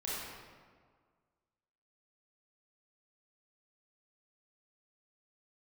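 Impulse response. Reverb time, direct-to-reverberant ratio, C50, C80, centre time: 1.7 s, -8.5 dB, -3.5 dB, -0.5 dB, 0.12 s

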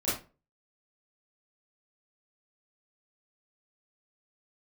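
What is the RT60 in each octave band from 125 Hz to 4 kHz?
0.40, 0.35, 0.35, 0.30, 0.25, 0.25 s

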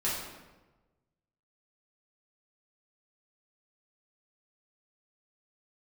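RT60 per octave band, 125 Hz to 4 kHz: 1.6, 1.3, 1.2, 1.1, 0.95, 0.80 s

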